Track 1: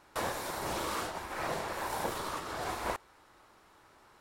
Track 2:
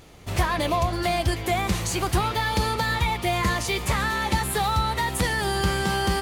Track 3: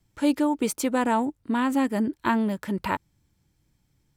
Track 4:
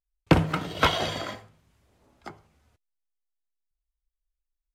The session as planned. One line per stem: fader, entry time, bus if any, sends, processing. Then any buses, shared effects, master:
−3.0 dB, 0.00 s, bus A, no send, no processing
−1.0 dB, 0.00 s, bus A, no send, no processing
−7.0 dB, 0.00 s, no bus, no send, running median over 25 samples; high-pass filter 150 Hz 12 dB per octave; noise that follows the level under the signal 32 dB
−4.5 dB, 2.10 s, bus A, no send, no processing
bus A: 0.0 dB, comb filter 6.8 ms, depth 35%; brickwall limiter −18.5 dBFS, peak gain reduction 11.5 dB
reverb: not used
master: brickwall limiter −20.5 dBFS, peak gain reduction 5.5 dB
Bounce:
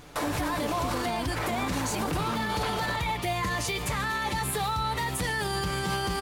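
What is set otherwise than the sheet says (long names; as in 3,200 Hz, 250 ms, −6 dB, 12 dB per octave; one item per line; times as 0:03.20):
stem 1 −3.0 dB → +5.5 dB
stem 4: entry 2.10 s → 1.80 s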